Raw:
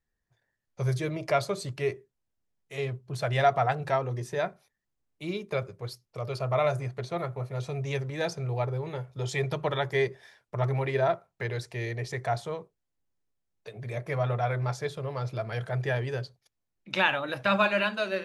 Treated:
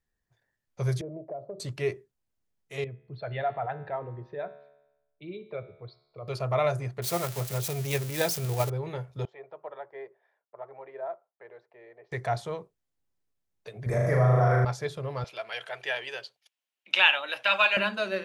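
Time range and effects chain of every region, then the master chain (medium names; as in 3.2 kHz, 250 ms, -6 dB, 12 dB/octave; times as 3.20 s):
1.01–1.60 s: Chebyshev band-pass 140–670 Hz, order 3 + tilt EQ +3.5 dB/octave + compression, threshold -33 dBFS
2.84–6.28 s: resonances exaggerated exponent 1.5 + steep low-pass 4.1 kHz 48 dB/octave + feedback comb 72 Hz, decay 0.98 s
7.02–8.70 s: zero-crossing glitches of -24 dBFS + transient shaper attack +6 dB, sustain +2 dB
9.25–12.12 s: ladder band-pass 770 Hz, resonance 25% + distance through air 76 m
13.86–14.65 s: high-order bell 3.1 kHz -13.5 dB 1.1 oct + flutter echo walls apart 6.7 m, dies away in 1.2 s + level flattener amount 50%
15.24–17.77 s: high-pass 680 Hz + peaking EQ 2.9 kHz +11 dB 0.65 oct + band-stop 1.2 kHz, Q 18
whole clip: none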